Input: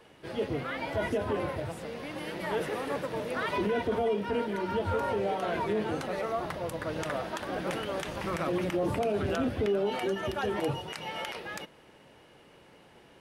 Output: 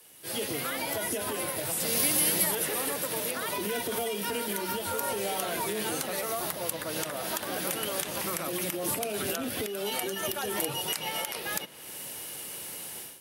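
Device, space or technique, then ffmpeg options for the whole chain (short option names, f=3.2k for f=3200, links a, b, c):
FM broadcast chain: -filter_complex "[0:a]highpass=70,dynaudnorm=f=250:g=3:m=16dB,acrossover=split=140|1200|4500[a][b][c][d];[a]acompressor=threshold=-41dB:ratio=4[e];[b]acompressor=threshold=-18dB:ratio=4[f];[c]acompressor=threshold=-29dB:ratio=4[g];[d]acompressor=threshold=-47dB:ratio=4[h];[e][f][g][h]amix=inputs=4:normalize=0,aemphasis=mode=production:type=75fm,alimiter=limit=-15.5dB:level=0:latency=1:release=430,asoftclip=type=hard:threshold=-17.5dB,lowpass=f=15k:w=0.5412,lowpass=f=15k:w=1.3066,aemphasis=mode=production:type=75fm,asettb=1/sr,asplit=3[i][j][k];[i]atrim=end=1.804[l];[j]atrim=start=1.8:end=2.55,asetpts=PTS-STARTPTS,afade=t=in:d=0.004:c=qsin,afade=t=out:st=0.746:d=0.004:c=qsin,bass=f=250:g=5,treble=f=4k:g=7[m];[k]atrim=start=2.546[n];[l][m]acrossfade=d=0.004:c1=hsin:c2=qsin[o];[o][n]acrossfade=d=0.004:c1=qsin:c2=hsin,volume=-8dB"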